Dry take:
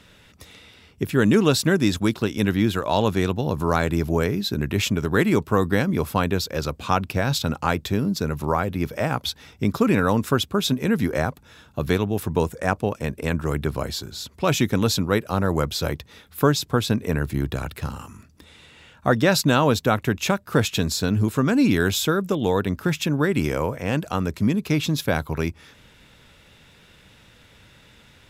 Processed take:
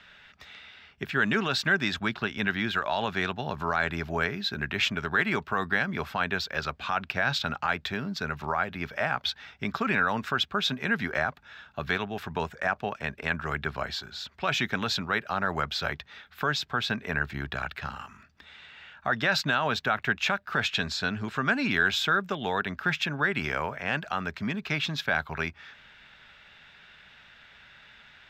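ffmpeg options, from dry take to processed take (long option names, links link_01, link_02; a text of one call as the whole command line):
ffmpeg -i in.wav -filter_complex "[0:a]asettb=1/sr,asplit=3[link_01][link_02][link_03];[link_01]atrim=end=1.974[link_04];[link_02]atrim=start=1.97:end=2.48,asetpts=PTS-STARTPTS,afade=type=in:duration=0.004:curve=qsin,afade=type=out:start_time=0.506:duration=0.004:curve=qsin,bass=frequency=250:gain=3,treble=frequency=4000:gain=-4[link_05];[link_03]atrim=start=2.476[link_06];[link_04][link_05]acrossfade=duration=0.004:curve1=hsin:curve2=qsin[link_07];[link_07][link_06]acrossfade=duration=0.004:curve1=qsin:curve2=hsin,asettb=1/sr,asplit=3[link_08][link_09][link_10];[link_08]atrim=end=20.744[link_11];[link_09]atrim=start=20.74:end=21.35,asetpts=PTS-STARTPTS,afade=type=in:duration=0.004:curve=qsin,afade=type=out:start_time=0.606:duration=0.004:curve=qsin,lowpass=11000[link_12];[link_10]atrim=start=21.346[link_13];[link_11][link_12]acrossfade=duration=0.004:curve1=hsin:curve2=qsin[link_14];[link_14][link_13]acrossfade=duration=0.004:curve1=qsin:curve2=hsin,acrossover=split=530 4300:gain=0.251 1 0.112[link_15][link_16][link_17];[link_15][link_16][link_17]amix=inputs=3:normalize=0,alimiter=limit=-15.5dB:level=0:latency=1:release=47,equalizer=frequency=100:width_type=o:width=0.33:gain=-8,equalizer=frequency=315:width_type=o:width=0.33:gain=-8,equalizer=frequency=500:width_type=o:width=0.33:gain=-11,equalizer=frequency=1000:width_type=o:width=0.33:gain=-5,equalizer=frequency=1600:width_type=o:width=0.33:gain=5,equalizer=frequency=10000:width_type=o:width=0.33:gain=-11,volume=2dB" out.wav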